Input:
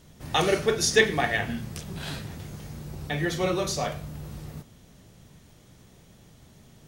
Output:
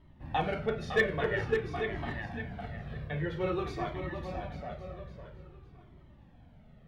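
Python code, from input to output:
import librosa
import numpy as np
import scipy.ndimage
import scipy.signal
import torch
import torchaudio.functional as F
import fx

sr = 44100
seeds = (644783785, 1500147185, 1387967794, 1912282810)

y = fx.air_absorb(x, sr, metres=490.0)
y = y + 10.0 ** (-7.5 / 20.0) * np.pad(y, (int(846 * sr / 1000.0), 0))[:len(y)]
y = np.clip(y, -10.0 ** (-14.0 / 20.0), 10.0 ** (-14.0 / 20.0))
y = fx.high_shelf(y, sr, hz=4600.0, db=8.0, at=(3.4, 3.9))
y = fx.echo_feedback(y, sr, ms=557, feedback_pct=25, wet_db=-7.0)
y = fx.comb_cascade(y, sr, direction='falling', hz=0.5)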